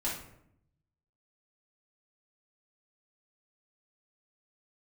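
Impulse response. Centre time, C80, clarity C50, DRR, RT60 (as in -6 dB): 40 ms, 8.5 dB, 4.0 dB, -7.5 dB, 0.75 s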